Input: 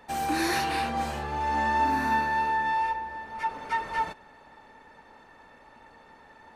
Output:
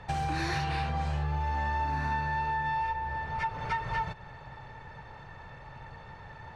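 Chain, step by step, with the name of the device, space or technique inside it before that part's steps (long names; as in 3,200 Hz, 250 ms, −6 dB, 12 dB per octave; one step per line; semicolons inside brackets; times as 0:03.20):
jukebox (low-pass filter 5,400 Hz 12 dB per octave; low shelf with overshoot 180 Hz +10.5 dB, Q 3; downward compressor 4 to 1, threshold −34 dBFS, peak gain reduction 12 dB)
level +4.5 dB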